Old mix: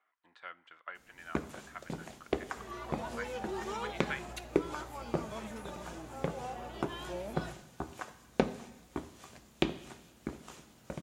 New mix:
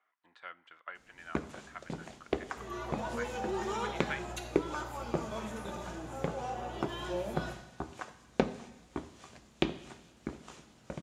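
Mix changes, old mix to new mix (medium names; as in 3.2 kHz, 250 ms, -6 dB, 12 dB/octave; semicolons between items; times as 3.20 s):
first sound: add low-pass 8 kHz 12 dB/octave; second sound: send +11.5 dB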